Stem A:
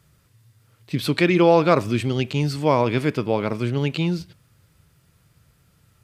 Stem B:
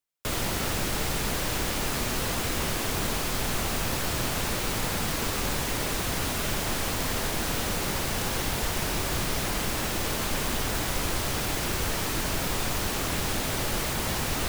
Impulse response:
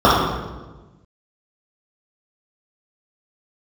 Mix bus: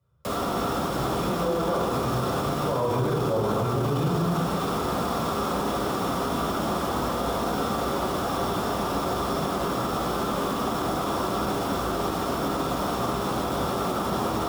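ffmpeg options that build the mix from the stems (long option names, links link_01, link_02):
-filter_complex "[0:a]lowpass=3100,aecho=1:1:2:0.47,volume=-13dB,afade=type=in:start_time=2.69:duration=0.24:silence=0.298538,asplit=2[link_01][link_02];[link_02]volume=-17dB[link_03];[1:a]flanger=delay=9.2:depth=7.5:regen=75:speed=0.35:shape=triangular,acrossover=split=180|670[link_04][link_05][link_06];[link_04]acompressor=threshold=-56dB:ratio=4[link_07];[link_05]acompressor=threshold=-42dB:ratio=4[link_08];[link_06]acompressor=threshold=-38dB:ratio=4[link_09];[link_07][link_08][link_09]amix=inputs=3:normalize=0,volume=0dB,asplit=2[link_10][link_11];[link_11]volume=-18dB[link_12];[2:a]atrim=start_sample=2205[link_13];[link_03][link_12]amix=inputs=2:normalize=0[link_14];[link_14][link_13]afir=irnorm=-1:irlink=0[link_15];[link_01][link_10][link_15]amix=inputs=3:normalize=0,alimiter=limit=-17dB:level=0:latency=1:release=29"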